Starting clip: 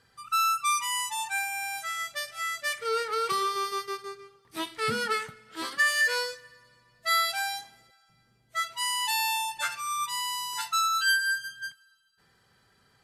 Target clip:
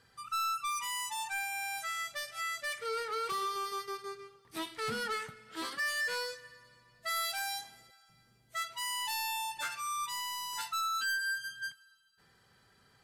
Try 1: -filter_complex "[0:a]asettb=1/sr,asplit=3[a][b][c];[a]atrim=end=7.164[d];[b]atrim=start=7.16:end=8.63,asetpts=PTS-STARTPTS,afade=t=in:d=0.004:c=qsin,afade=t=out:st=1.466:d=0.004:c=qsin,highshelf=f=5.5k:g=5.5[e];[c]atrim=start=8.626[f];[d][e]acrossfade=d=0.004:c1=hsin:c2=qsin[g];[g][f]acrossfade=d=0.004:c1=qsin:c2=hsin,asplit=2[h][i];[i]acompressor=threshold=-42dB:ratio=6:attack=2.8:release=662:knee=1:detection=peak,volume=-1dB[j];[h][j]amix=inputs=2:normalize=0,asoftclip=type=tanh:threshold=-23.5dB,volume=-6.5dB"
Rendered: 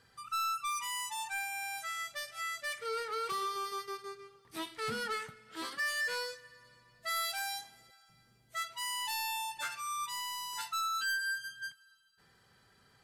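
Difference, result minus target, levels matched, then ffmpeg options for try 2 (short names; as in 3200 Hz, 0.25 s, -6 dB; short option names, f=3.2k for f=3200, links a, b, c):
compressor: peak gain reduction +9 dB
-filter_complex "[0:a]asettb=1/sr,asplit=3[a][b][c];[a]atrim=end=7.164[d];[b]atrim=start=7.16:end=8.63,asetpts=PTS-STARTPTS,afade=t=in:d=0.004:c=qsin,afade=t=out:st=1.466:d=0.004:c=qsin,highshelf=f=5.5k:g=5.5[e];[c]atrim=start=8.626[f];[d][e]acrossfade=d=0.004:c1=hsin:c2=qsin[g];[g][f]acrossfade=d=0.004:c1=qsin:c2=hsin,asplit=2[h][i];[i]acompressor=threshold=-31.5dB:ratio=6:attack=2.8:release=662:knee=1:detection=peak,volume=-1dB[j];[h][j]amix=inputs=2:normalize=0,asoftclip=type=tanh:threshold=-23.5dB,volume=-6.5dB"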